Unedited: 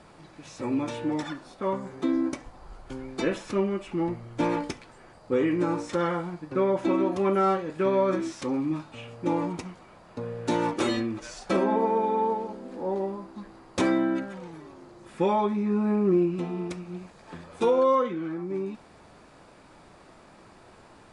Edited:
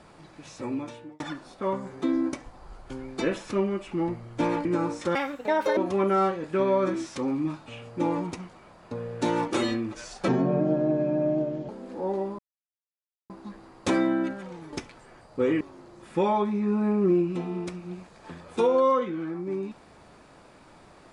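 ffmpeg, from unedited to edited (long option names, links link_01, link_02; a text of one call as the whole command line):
ffmpeg -i in.wav -filter_complex "[0:a]asplit=10[link_01][link_02][link_03][link_04][link_05][link_06][link_07][link_08][link_09][link_10];[link_01]atrim=end=1.2,asetpts=PTS-STARTPTS,afade=type=out:start_time=0.49:duration=0.71[link_11];[link_02]atrim=start=1.2:end=4.652,asetpts=PTS-STARTPTS,afade=type=in:duration=0.004:curve=hsin[link_12];[link_03]atrim=start=5.528:end=6.034[link_13];[link_04]atrim=start=6.03:end=7.03,asetpts=PTS-STARTPTS,asetrate=71001,aresample=44100,atrim=end_sample=27391,asetpts=PTS-STARTPTS[link_14];[link_05]atrim=start=7.026:end=11.544[link_15];[link_06]atrim=start=11.54:end=12.51,asetpts=PTS-STARTPTS,asetrate=30429,aresample=44100[link_16];[link_07]atrim=start=12.506:end=13.21,asetpts=PTS-STARTPTS,afade=type=out:start_time=0.7:duration=0.004:curve=hsin,apad=pad_dur=0.91[link_17];[link_08]atrim=start=13.21:end=14.642,asetpts=PTS-STARTPTS,afade=type=in:duration=0.004:curve=hsin[link_18];[link_09]atrim=start=4.648:end=5.532[link_19];[link_10]atrim=start=14.638[link_20];[link_11][link_12]concat=n=2:v=0:a=1[link_21];[link_21][link_13]acrossfade=duration=0.004:curve1=hsin:curve2=hsin[link_22];[link_22][link_14]acrossfade=duration=0.004:curve1=hsin:curve2=hsin[link_23];[link_23][link_15]acrossfade=duration=0.004:curve1=hsin:curve2=hsin[link_24];[link_24][link_16]acrossfade=duration=0.004:curve1=hsin:curve2=hsin[link_25];[link_17][link_18]concat=n=2:v=0:a=1[link_26];[link_25][link_26]acrossfade=duration=0.004:curve1=hsin:curve2=hsin[link_27];[link_27][link_19]acrossfade=duration=0.004:curve1=hsin:curve2=hsin[link_28];[link_28][link_20]acrossfade=duration=0.004:curve1=hsin:curve2=hsin" out.wav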